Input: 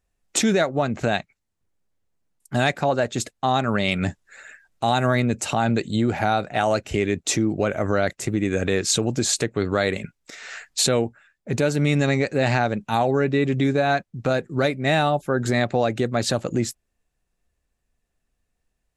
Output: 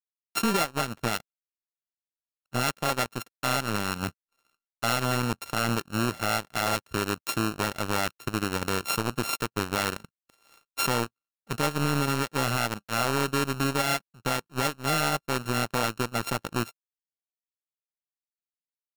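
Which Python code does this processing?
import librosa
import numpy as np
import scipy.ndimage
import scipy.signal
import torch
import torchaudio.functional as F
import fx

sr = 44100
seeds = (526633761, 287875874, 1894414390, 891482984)

y = np.r_[np.sort(x[:len(x) // 32 * 32].reshape(-1, 32), axis=1).ravel(), x[len(x) // 32 * 32:]]
y = fx.power_curve(y, sr, exponent=2.0)
y = np.clip(10.0 ** (19.5 / 20.0) * y, -1.0, 1.0) / 10.0 ** (19.5 / 20.0)
y = y * 10.0 ** (4.0 / 20.0)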